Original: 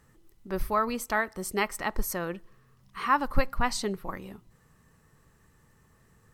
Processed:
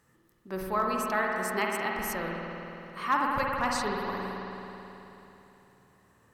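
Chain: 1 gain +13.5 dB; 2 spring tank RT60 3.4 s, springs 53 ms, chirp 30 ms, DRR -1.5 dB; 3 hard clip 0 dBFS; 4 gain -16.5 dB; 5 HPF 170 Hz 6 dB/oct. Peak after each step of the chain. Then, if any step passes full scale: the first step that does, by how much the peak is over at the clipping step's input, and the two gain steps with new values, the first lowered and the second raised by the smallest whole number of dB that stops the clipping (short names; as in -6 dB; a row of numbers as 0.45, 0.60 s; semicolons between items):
+6.0, +4.5, 0.0, -16.5, -15.5 dBFS; step 1, 4.5 dB; step 1 +8.5 dB, step 4 -11.5 dB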